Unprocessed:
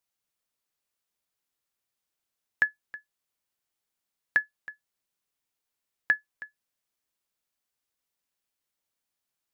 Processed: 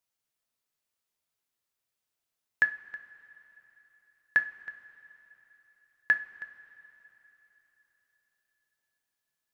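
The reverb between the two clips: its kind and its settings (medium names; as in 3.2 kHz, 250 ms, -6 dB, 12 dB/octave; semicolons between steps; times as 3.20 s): two-slope reverb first 0.32 s, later 4 s, from -18 dB, DRR 7.5 dB; trim -1.5 dB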